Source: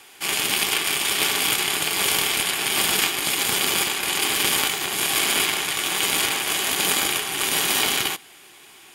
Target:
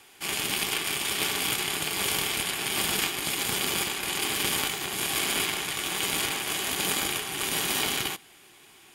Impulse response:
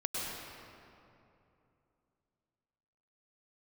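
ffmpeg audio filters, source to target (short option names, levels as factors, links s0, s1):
-af "lowshelf=f=250:g=7.5,volume=0.473"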